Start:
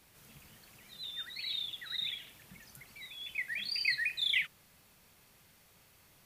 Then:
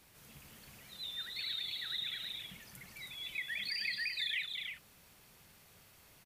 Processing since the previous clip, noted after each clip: compression 3:1, threshold -37 dBFS, peak gain reduction 8.5 dB; on a send: multi-tap echo 217/320 ms -7.5/-6 dB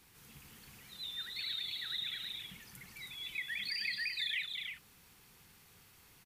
peaking EQ 610 Hz -13.5 dB 0.24 oct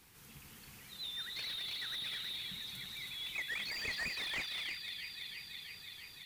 feedback echo behind a high-pass 332 ms, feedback 77%, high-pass 2.3 kHz, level -8 dB; slew-rate limiter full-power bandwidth 36 Hz; trim +1 dB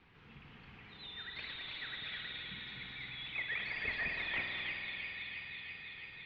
inverse Chebyshev low-pass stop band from 11 kHz, stop band 70 dB; spring tank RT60 3.9 s, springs 48 ms, chirp 45 ms, DRR 2 dB; trim +1 dB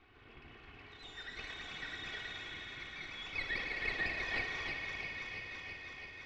comb filter that takes the minimum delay 2.7 ms; low-pass 3.1 kHz 12 dB/octave; de-hum 62.74 Hz, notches 31; trim +3.5 dB

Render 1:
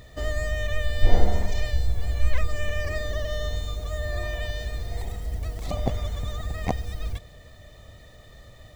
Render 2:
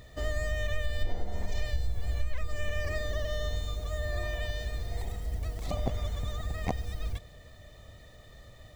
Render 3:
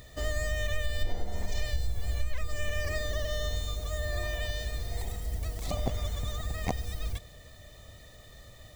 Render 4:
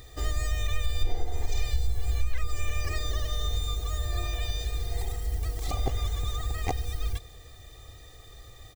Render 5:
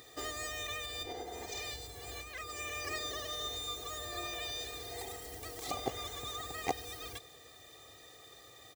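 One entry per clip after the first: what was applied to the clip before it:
compression 10:1, threshold -20 dBFS, peak gain reduction 13.5 dB; trim -3.5 dB
treble shelf 4.3 kHz +8.5 dB
comb 2.5 ms, depth 73%
high-pass 230 Hz 12 dB/octave; trim -1.5 dB

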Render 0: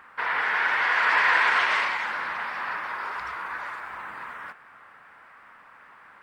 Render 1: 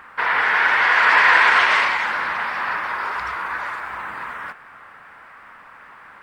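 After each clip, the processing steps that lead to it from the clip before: bass shelf 72 Hz +6.5 dB; trim +7 dB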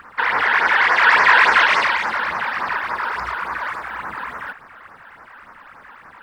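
phase shifter stages 12, 3.5 Hz, lowest notch 110–3500 Hz; trim +4.5 dB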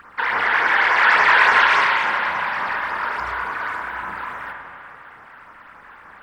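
spring tank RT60 2.5 s, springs 33/43 ms, chirp 75 ms, DRR 2 dB; trim -3 dB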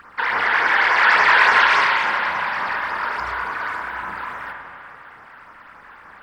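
peaking EQ 4.8 kHz +4 dB 0.52 oct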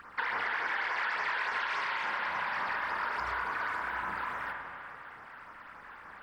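compression 12:1, threshold -24 dBFS, peak gain reduction 15 dB; trim -5.5 dB

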